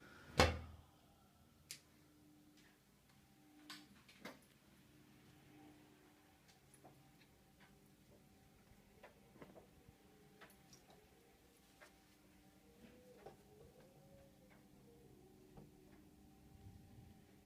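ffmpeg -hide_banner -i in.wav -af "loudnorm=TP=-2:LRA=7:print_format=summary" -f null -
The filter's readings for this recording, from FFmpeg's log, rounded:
Input Integrated:    -45.5 LUFS
Input True Peak:     -13.8 dBTP
Input LRA:             4.3 LU
Input Threshold:     -63.0 LUFS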